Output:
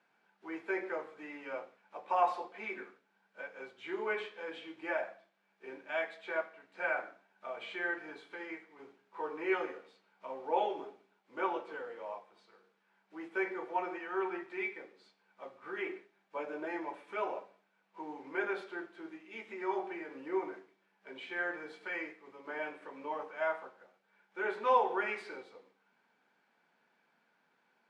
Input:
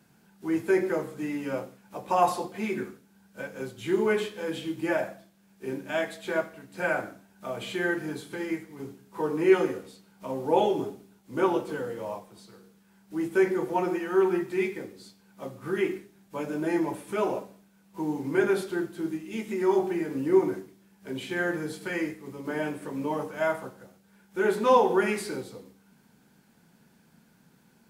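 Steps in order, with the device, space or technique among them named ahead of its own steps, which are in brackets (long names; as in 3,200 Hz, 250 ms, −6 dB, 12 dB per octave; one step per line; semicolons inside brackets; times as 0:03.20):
tin-can telephone (band-pass filter 620–2,700 Hz; hollow resonant body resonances 2,300 Hz, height 10 dB, ringing for 90 ms)
0:15.86–0:16.66: dynamic equaliser 470 Hz, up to +5 dB, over −50 dBFS, Q 0.8
level −4.5 dB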